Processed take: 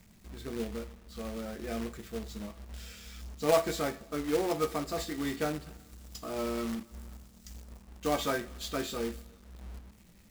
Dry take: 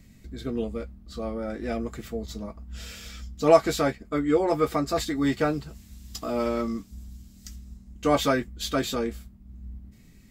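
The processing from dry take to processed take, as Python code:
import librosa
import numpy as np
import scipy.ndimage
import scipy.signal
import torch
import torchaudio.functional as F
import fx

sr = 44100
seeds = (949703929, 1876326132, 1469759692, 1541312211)

y = fx.rev_double_slope(x, sr, seeds[0], early_s=0.34, late_s=2.1, knee_db=-20, drr_db=7.5)
y = fx.quant_companded(y, sr, bits=4)
y = y * librosa.db_to_amplitude(-8.5)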